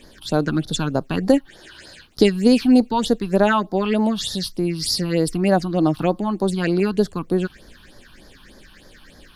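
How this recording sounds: a quantiser's noise floor 12-bit, dither none; phasing stages 6, 3.3 Hz, lowest notch 500–2700 Hz

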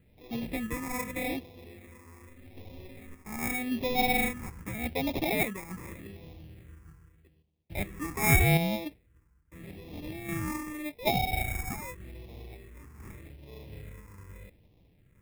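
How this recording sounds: aliases and images of a low sample rate 1.5 kHz, jitter 0%; phasing stages 4, 0.83 Hz, lowest notch 610–1400 Hz; random-step tremolo

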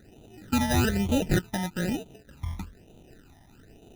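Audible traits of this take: aliases and images of a low sample rate 1.1 kHz, jitter 0%; phasing stages 12, 1.1 Hz, lowest notch 450–1700 Hz

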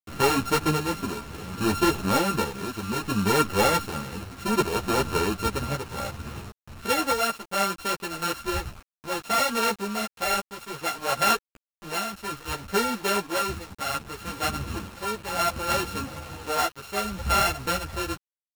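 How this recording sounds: a buzz of ramps at a fixed pitch in blocks of 32 samples; tremolo triangle 0.64 Hz, depth 65%; a quantiser's noise floor 8-bit, dither none; a shimmering, thickened sound

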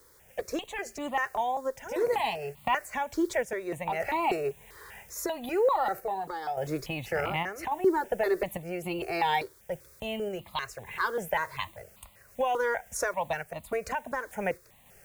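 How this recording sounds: a quantiser's noise floor 10-bit, dither triangular; random-step tremolo; notches that jump at a steady rate 5.1 Hz 730–1600 Hz

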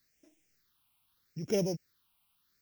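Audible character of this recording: a buzz of ramps at a fixed pitch in blocks of 8 samples; tremolo saw down 2 Hz, depth 65%; a quantiser's noise floor 12-bit, dither triangular; phasing stages 6, 0.79 Hz, lowest notch 470–1200 Hz

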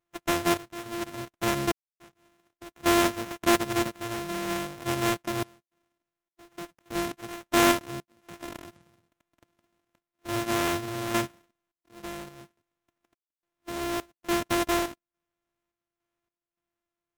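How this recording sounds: a buzz of ramps at a fixed pitch in blocks of 128 samples; random-step tremolo, depth 100%; aliases and images of a low sample rate 4.6 kHz, jitter 20%; MP3

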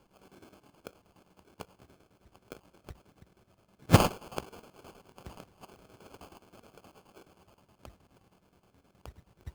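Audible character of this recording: a buzz of ramps at a fixed pitch in blocks of 8 samples; chopped level 9.5 Hz, depth 65%, duty 65%; aliases and images of a low sample rate 1.9 kHz, jitter 0%

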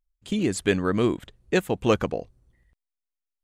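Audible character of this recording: noise floor -86 dBFS; spectral tilt -5.0 dB/octave

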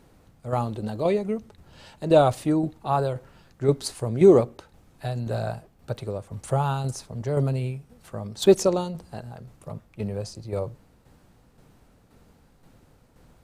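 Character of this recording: tremolo saw down 1.9 Hz, depth 50%

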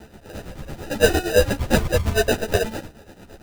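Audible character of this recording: a quantiser's noise floor 8-bit, dither triangular; tremolo triangle 8.8 Hz, depth 80%; aliases and images of a low sample rate 1.1 kHz, jitter 0%; a shimmering, thickened sound

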